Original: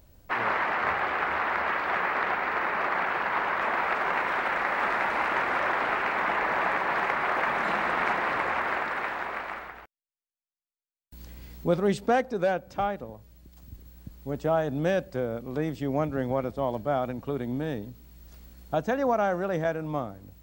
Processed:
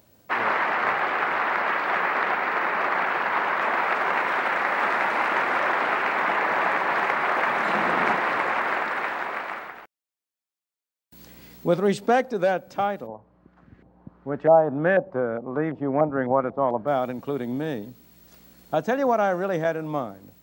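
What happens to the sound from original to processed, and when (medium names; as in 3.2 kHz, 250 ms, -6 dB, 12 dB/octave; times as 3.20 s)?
7.74–8.16 s: bass shelf 320 Hz +8.5 dB
13.06–16.86 s: LFO low-pass saw up 0.93 Hz -> 5.4 Hz 720–1900 Hz
whole clip: high-pass 160 Hz 12 dB/octave; trim +3.5 dB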